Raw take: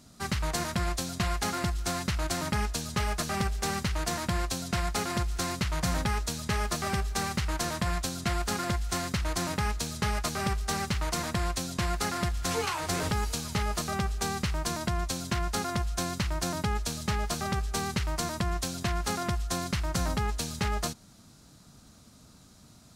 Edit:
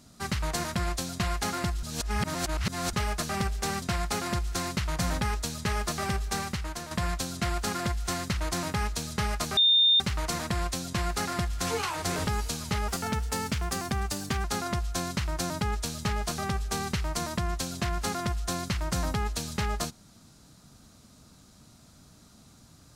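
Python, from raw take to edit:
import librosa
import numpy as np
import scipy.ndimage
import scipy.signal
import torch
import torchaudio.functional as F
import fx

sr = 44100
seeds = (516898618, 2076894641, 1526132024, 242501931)

y = fx.edit(x, sr, fx.reverse_span(start_s=1.83, length_s=1.1),
    fx.cut(start_s=3.82, length_s=0.84),
    fx.fade_out_to(start_s=7.15, length_s=0.6, floor_db=-9.5),
    fx.bleep(start_s=10.41, length_s=0.43, hz=3630.0, db=-17.5),
    fx.speed_span(start_s=13.72, length_s=1.75, speed=1.12), tone=tone)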